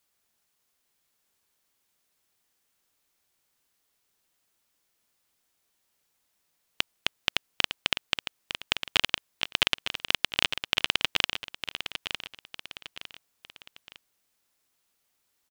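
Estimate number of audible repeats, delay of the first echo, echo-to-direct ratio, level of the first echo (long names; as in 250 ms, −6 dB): 3, 906 ms, −8.5 dB, −9.0 dB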